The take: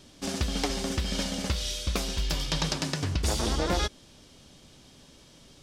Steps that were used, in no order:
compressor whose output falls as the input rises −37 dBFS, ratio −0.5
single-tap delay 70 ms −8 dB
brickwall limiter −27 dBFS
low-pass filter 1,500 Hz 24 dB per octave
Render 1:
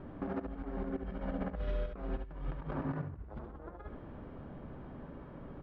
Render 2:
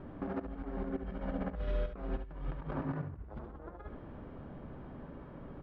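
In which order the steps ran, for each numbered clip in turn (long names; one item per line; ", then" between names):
low-pass filter, then compressor whose output falls as the input rises, then single-tap delay, then brickwall limiter
low-pass filter, then compressor whose output falls as the input rises, then brickwall limiter, then single-tap delay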